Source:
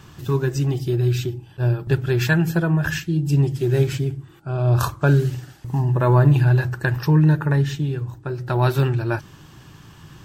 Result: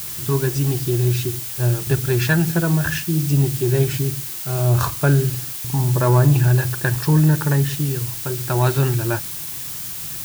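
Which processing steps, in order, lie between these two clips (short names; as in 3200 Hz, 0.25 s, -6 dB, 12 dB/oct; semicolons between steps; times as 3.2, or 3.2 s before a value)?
added noise blue -31 dBFS; in parallel at -9 dB: hard clip -15 dBFS, distortion -12 dB; on the sum: gain -1.5 dB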